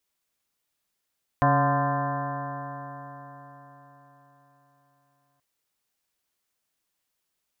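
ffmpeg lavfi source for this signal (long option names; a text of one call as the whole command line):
ffmpeg -f lavfi -i "aevalsrc='0.0794*pow(10,-3*t/4.46)*sin(2*PI*138.2*t)+0.0473*pow(10,-3*t/4.46)*sin(2*PI*277.6*t)+0.01*pow(10,-3*t/4.46)*sin(2*PI*419.37*t)+0.0398*pow(10,-3*t/4.46)*sin(2*PI*564.66*t)+0.0794*pow(10,-3*t/4.46)*sin(2*PI*714.57*t)+0.0178*pow(10,-3*t/4.46)*sin(2*PI*870.15*t)+0.0794*pow(10,-3*t/4.46)*sin(2*PI*1032.36*t)+0.02*pow(10,-3*t/4.46)*sin(2*PI*1202.09*t)+0.0158*pow(10,-3*t/4.46)*sin(2*PI*1380.19*t)+0.0237*pow(10,-3*t/4.46)*sin(2*PI*1567.38*t)+0.02*pow(10,-3*t/4.46)*sin(2*PI*1764.34*t)':duration=3.98:sample_rate=44100" out.wav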